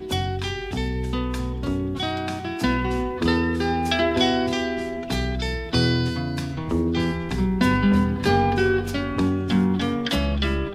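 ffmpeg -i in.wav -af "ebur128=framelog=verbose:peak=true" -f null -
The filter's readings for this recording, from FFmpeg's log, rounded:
Integrated loudness:
  I:         -23.3 LUFS
  Threshold: -33.3 LUFS
Loudness range:
  LRA:         3.4 LU
  Threshold: -43.0 LUFS
  LRA low:   -25.0 LUFS
  LRA high:  -21.6 LUFS
True peak:
  Peak:       -7.5 dBFS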